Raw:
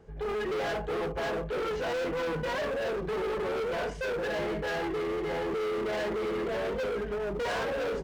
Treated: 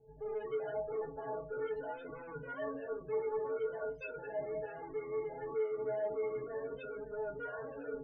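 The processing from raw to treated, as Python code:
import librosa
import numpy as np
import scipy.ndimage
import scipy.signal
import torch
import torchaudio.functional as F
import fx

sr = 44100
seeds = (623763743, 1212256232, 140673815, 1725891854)

y = fx.spec_topn(x, sr, count=32)
y = fx.stiff_resonator(y, sr, f0_hz=130.0, decay_s=0.37, stiffness=0.03)
y = y * 10.0 ** (3.0 / 20.0)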